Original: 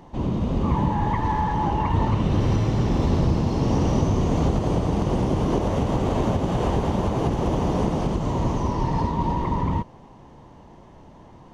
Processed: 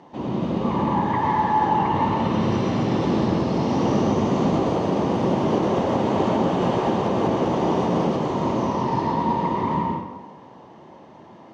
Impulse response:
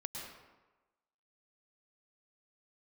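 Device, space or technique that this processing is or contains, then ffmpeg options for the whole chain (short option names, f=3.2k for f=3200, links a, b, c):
supermarket ceiling speaker: -filter_complex "[0:a]highpass=210,lowpass=5.5k[a];[1:a]atrim=start_sample=2205[b];[a][b]afir=irnorm=-1:irlink=0,volume=4.5dB"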